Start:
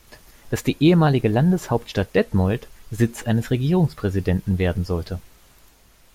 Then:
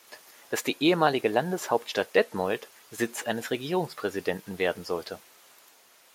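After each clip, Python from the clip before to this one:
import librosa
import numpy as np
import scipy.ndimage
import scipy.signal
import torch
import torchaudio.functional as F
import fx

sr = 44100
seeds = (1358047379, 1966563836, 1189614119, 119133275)

y = scipy.signal.sosfilt(scipy.signal.butter(2, 460.0, 'highpass', fs=sr, output='sos'), x)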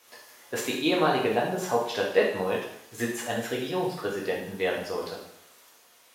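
y = fx.rev_plate(x, sr, seeds[0], rt60_s=0.73, hf_ratio=1.0, predelay_ms=0, drr_db=-2.5)
y = y * 10.0 ** (-4.5 / 20.0)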